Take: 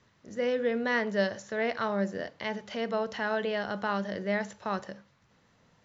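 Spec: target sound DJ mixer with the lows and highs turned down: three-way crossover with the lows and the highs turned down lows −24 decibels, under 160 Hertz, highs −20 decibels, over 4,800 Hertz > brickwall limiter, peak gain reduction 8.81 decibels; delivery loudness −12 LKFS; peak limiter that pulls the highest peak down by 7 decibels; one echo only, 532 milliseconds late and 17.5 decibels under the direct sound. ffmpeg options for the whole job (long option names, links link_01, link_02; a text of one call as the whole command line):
ffmpeg -i in.wav -filter_complex "[0:a]alimiter=limit=-22dB:level=0:latency=1,acrossover=split=160 4800:gain=0.0631 1 0.1[link_01][link_02][link_03];[link_01][link_02][link_03]amix=inputs=3:normalize=0,aecho=1:1:532:0.133,volume=26dB,alimiter=limit=-2dB:level=0:latency=1" out.wav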